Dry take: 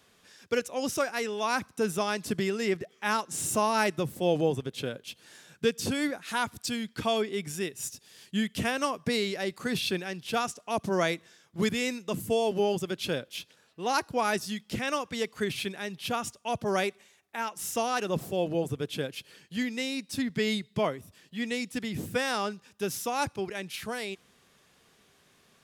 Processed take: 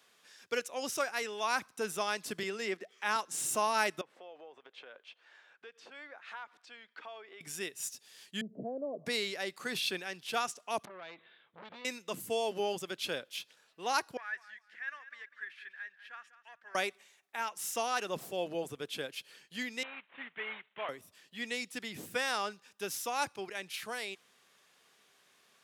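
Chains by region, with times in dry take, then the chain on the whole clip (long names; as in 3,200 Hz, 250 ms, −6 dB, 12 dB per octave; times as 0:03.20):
0:02.43–0:03.16: elliptic high-pass filter 190 Hz + parametric band 16,000 Hz −8.5 dB 0.74 octaves + one half of a high-frequency compander encoder only
0:04.01–0:07.41: downward compressor, threshold −35 dBFS + band-pass filter 580–2,200 Hz
0:08.41–0:09.06: Chebyshev band-pass filter 130–660 Hz, order 4 + envelope flattener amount 50%
0:10.85–0:11.85: Butterworth low-pass 3,900 Hz 72 dB per octave + downward compressor 12 to 1, threshold −34 dBFS + saturating transformer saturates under 1,300 Hz
0:14.17–0:16.75: leveller curve on the samples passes 1 + resonant band-pass 1,700 Hz, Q 10 + repeating echo 197 ms, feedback 23%, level −14 dB
0:19.83–0:20.89: variable-slope delta modulation 16 kbit/s + high-pass filter 1,200 Hz 6 dB per octave
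whole clip: high-pass filter 810 Hz 6 dB per octave; parametric band 14,000 Hz −2 dB 2.4 octaves; level −1 dB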